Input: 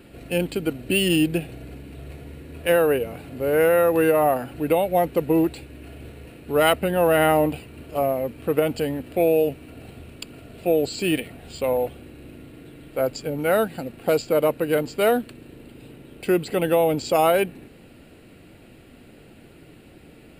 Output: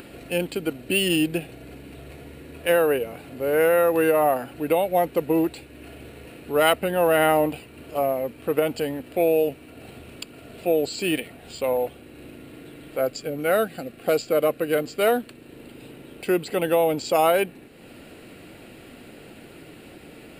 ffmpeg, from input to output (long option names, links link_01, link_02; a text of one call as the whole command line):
ffmpeg -i in.wav -filter_complex "[0:a]asettb=1/sr,asplit=3[link_01][link_02][link_03];[link_01]atrim=end=12.984[link_04];[link_02]atrim=start=12.98:end=15.08,asetpts=PTS-STARTPTS,afade=type=in:duration=0.004:curve=qsin,afade=type=out:start_time=2.096:duration=0.004:curve=qsin,asuperstop=centerf=910:order=4:qfactor=5.4[link_05];[link_03]atrim=start=15.076[link_06];[link_04][link_05]acrossfade=duration=0.004:curve1=hsin:curve2=qsin[link_07];[link_07][link_06]acrossfade=duration=0.004:curve1=qsin:curve2=hsin,lowshelf=frequency=170:gain=-9.5,acompressor=mode=upward:threshold=-36dB:ratio=2.5" out.wav